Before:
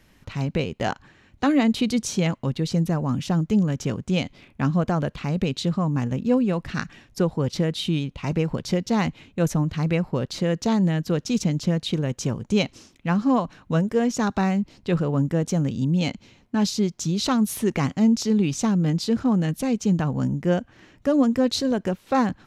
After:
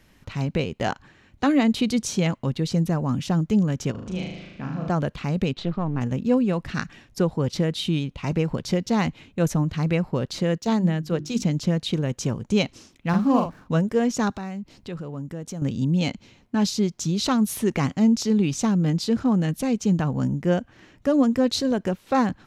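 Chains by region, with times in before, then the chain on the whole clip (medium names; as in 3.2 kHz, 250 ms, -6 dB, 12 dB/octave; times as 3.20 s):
3.91–4.90 s: low-pass 5.7 kHz + compression 2.5:1, threshold -34 dBFS + flutter echo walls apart 6.5 m, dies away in 1 s
5.53–6.01 s: partial rectifier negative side -7 dB + Chebyshev low-pass 3.1 kHz
10.58–11.42 s: de-esser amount 70% + hum notches 50/100/150/200/250/300/350 Hz + three bands expanded up and down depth 70%
13.09–13.72 s: median filter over 15 samples + doubling 43 ms -4.5 dB
14.33–15.62 s: treble shelf 9.6 kHz +4.5 dB + compression 2:1, threshold -38 dBFS
whole clip: none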